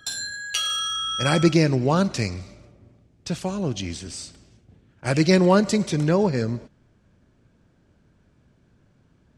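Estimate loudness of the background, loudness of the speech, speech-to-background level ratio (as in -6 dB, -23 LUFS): -25.5 LUFS, -22.0 LUFS, 3.5 dB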